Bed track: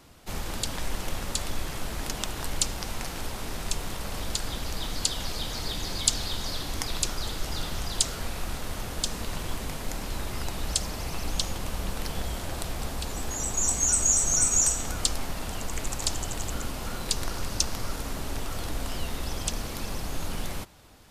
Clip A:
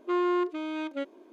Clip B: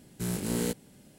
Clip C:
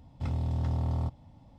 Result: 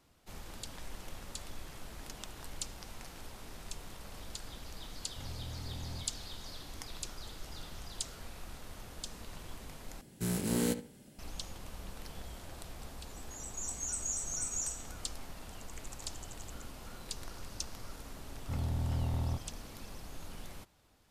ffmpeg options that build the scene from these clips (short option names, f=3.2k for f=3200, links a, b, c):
-filter_complex "[3:a]asplit=2[a][b];[0:a]volume=-14dB[c];[2:a]asplit=2[d][e];[e]adelay=71,lowpass=f=2.8k:p=1,volume=-11dB,asplit=2[f][g];[g]adelay=71,lowpass=f=2.8k:p=1,volume=0.29,asplit=2[h][i];[i]adelay=71,lowpass=f=2.8k:p=1,volume=0.29[j];[d][f][h][j]amix=inputs=4:normalize=0[k];[c]asplit=2[l][m];[l]atrim=end=10.014[n];[k]atrim=end=1.18,asetpts=PTS-STARTPTS,volume=-1.5dB[o];[m]atrim=start=11.186[p];[a]atrim=end=1.58,asetpts=PTS-STARTPTS,volume=-14dB,afade=t=in:d=0.004:c=hsin,afade=t=out:st=1.576:d=0.004:c=hsin,adelay=4950[q];[b]atrim=end=1.58,asetpts=PTS-STARTPTS,volume=-4dB,afade=t=in:d=0.004:c=hsin,afade=t=out:st=1.576:d=0.004:c=hsin,adelay=806148S[r];[n][o]acrossfade=d=0.004:c1=hsin:c2=hsin[s];[s][p]acrossfade=d=0.004:c1=hsin:c2=hsin[t];[t][q][r]amix=inputs=3:normalize=0"